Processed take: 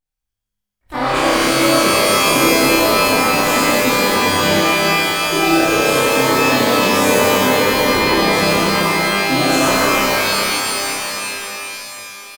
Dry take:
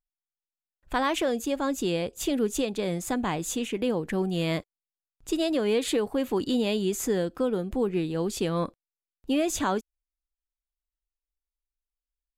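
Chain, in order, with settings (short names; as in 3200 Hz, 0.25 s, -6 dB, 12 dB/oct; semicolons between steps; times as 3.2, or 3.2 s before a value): harmoniser -12 st -7 dB, +3 st -3 dB; reverb removal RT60 1.5 s; on a send: flutter echo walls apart 5.2 m, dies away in 0.76 s; on the sum: shimmer reverb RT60 3.6 s, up +12 st, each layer -2 dB, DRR -7.5 dB; gain -2 dB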